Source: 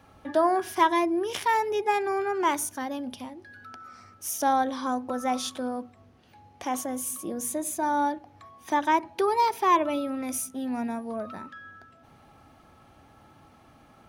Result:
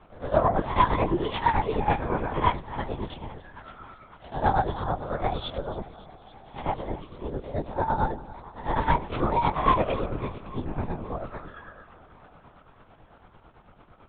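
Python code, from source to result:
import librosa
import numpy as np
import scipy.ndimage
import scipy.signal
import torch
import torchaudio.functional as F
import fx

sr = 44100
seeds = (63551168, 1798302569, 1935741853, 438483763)

p1 = fx.spec_swells(x, sr, rise_s=0.44)
p2 = fx.peak_eq(p1, sr, hz=2300.0, db=-3.0, octaves=2.0)
p3 = fx.hum_notches(p2, sr, base_hz=50, count=8)
p4 = np.clip(10.0 ** (16.5 / 20.0) * p3, -1.0, 1.0) / 10.0 ** (16.5 / 20.0)
p5 = p3 + F.gain(torch.from_numpy(p4), -3.5).numpy()
p6 = fx.tremolo_shape(p5, sr, shape='triangle', hz=9.0, depth_pct=80)
p7 = fx.echo_thinned(p6, sr, ms=278, feedback_pct=73, hz=170.0, wet_db=-17.5)
y = fx.lpc_vocoder(p7, sr, seeds[0], excitation='whisper', order=10)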